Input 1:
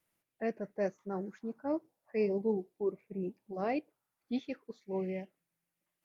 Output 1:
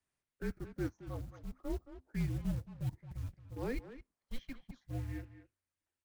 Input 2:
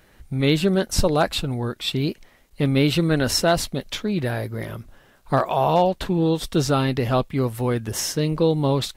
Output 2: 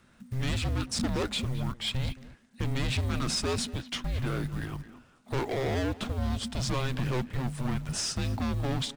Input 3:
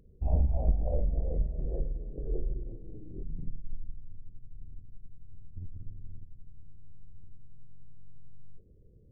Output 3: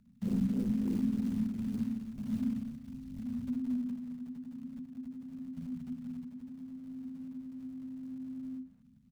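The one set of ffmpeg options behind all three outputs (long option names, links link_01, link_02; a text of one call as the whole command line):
ffmpeg -i in.wav -filter_complex "[0:a]asplit=2[link_01][link_02];[link_02]acrusher=bits=5:mix=0:aa=0.5,volume=-12dB[link_03];[link_01][link_03]amix=inputs=2:normalize=0,volume=20.5dB,asoftclip=hard,volume=-20.5dB,aresample=22050,aresample=44100,acrusher=bits=6:mode=log:mix=0:aa=0.000001,asplit=2[link_04][link_05];[link_05]adelay=220,highpass=300,lowpass=3400,asoftclip=type=hard:threshold=-27.5dB,volume=-12dB[link_06];[link_04][link_06]amix=inputs=2:normalize=0,afreqshift=-260,volume=-6dB" out.wav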